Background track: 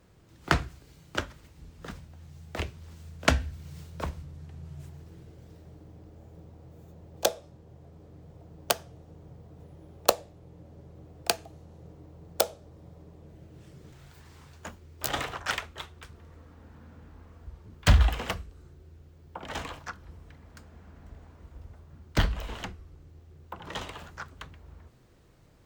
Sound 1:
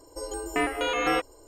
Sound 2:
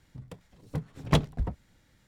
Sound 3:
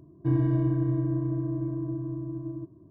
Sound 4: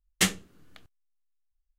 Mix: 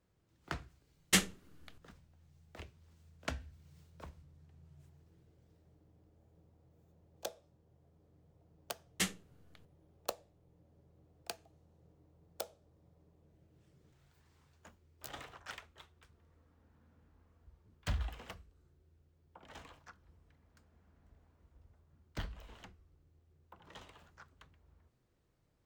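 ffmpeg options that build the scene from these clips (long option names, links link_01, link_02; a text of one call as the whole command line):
ffmpeg -i bed.wav -i cue0.wav -i cue1.wav -i cue2.wav -i cue3.wav -filter_complex "[4:a]asplit=2[link_01][link_02];[0:a]volume=-17dB[link_03];[link_01]atrim=end=1.78,asetpts=PTS-STARTPTS,volume=-4dB,afade=type=in:duration=0.004:curve=hsin,afade=type=out:start_time=1.776:duration=0.004:curve=hsin,adelay=920[link_04];[link_02]atrim=end=1.78,asetpts=PTS-STARTPTS,volume=-10.5dB,afade=type=in:duration=0.004:curve=hsin,afade=type=out:start_time=1.776:duration=0.004:curve=hsin,adelay=8790[link_05];[link_03][link_04][link_05]amix=inputs=3:normalize=0" out.wav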